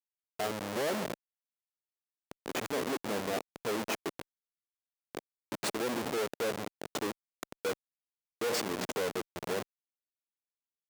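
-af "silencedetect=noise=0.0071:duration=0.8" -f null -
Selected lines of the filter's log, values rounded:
silence_start: 1.14
silence_end: 2.31 | silence_duration: 1.18
silence_start: 4.22
silence_end: 5.15 | silence_duration: 0.93
silence_start: 9.62
silence_end: 10.89 | silence_duration: 1.27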